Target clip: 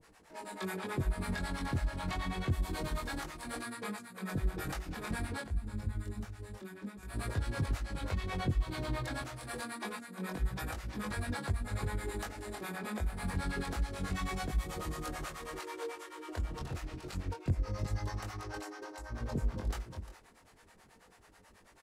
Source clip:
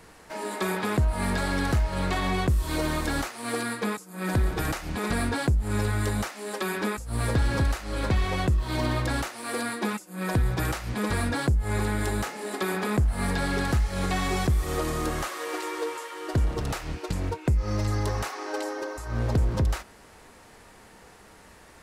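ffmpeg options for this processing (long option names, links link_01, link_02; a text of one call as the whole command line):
ffmpeg -i in.wav -filter_complex "[0:a]aecho=1:1:353:0.376,acrossover=split=490[link_01][link_02];[link_01]aeval=exprs='val(0)*(1-1/2+1/2*cos(2*PI*9.2*n/s))':channel_layout=same[link_03];[link_02]aeval=exprs='val(0)*(1-1/2-1/2*cos(2*PI*9.2*n/s))':channel_layout=same[link_04];[link_03][link_04]amix=inputs=2:normalize=0,asettb=1/sr,asplit=3[link_05][link_06][link_07];[link_05]atrim=end=5.414[link_08];[link_06]atrim=start=5.41:end=7.03,asetpts=PTS-STARTPTS,afade=type=in:duration=0.004:curve=qsin,afade=type=out:start_time=1.616:duration=0.004:curve=qsin,acrossover=split=260[link_09][link_10];[link_10]acompressor=threshold=-50dB:ratio=2.5[link_11];[link_09][link_11]amix=inputs=2:normalize=0[link_12];[link_07]atrim=start=7.026[link_13];[link_08][link_12]acrossfade=duration=0.004:curve1=hsin:curve2=qsin[link_14];[link_14][link_13]acrossfade=duration=0.004:curve1=qsin:curve2=hsin,flanger=delay=20:depth=2.8:speed=0.27,volume=-3.5dB" out.wav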